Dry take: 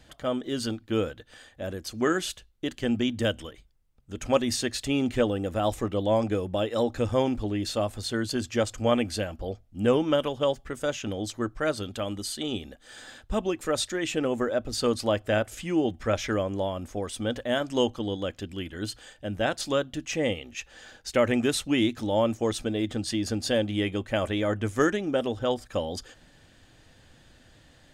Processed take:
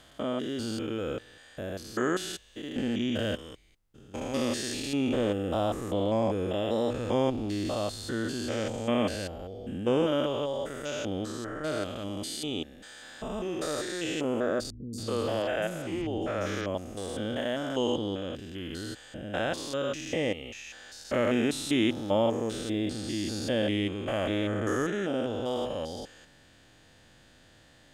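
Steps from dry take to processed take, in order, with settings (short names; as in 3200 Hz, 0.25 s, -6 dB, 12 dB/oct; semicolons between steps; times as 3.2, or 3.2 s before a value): stepped spectrum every 0.2 s; low shelf 130 Hz -6 dB; 14.7–16.75 three bands offset in time lows, highs, mids 0.23/0.28 s, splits 240/5600 Hz; gain +1.5 dB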